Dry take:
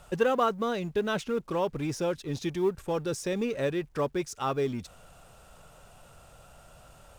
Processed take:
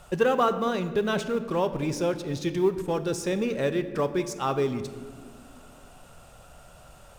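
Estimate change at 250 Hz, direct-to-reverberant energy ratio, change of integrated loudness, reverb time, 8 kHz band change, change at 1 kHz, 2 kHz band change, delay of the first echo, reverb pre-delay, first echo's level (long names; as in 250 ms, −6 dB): +3.5 dB, 10.0 dB, +3.0 dB, 1.7 s, +2.5 dB, +3.0 dB, +3.0 dB, no echo audible, 3 ms, no echo audible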